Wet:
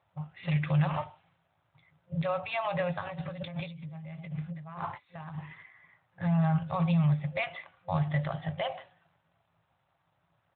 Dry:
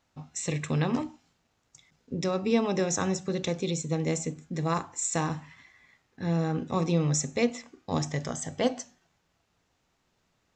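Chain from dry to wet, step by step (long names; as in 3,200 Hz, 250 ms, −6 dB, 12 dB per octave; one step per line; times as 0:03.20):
low-pass that shuts in the quiet parts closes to 1,600 Hz, open at −27 dBFS
brick-wall band-stop 180–520 Hz
brickwall limiter −24.5 dBFS, peak gain reduction 8.5 dB
0:03.01–0:05.38: compressor whose output falls as the input rises −44 dBFS, ratio −1
double-tracking delay 19 ms −13 dB
level +4.5 dB
AMR narrowband 12.2 kbit/s 8,000 Hz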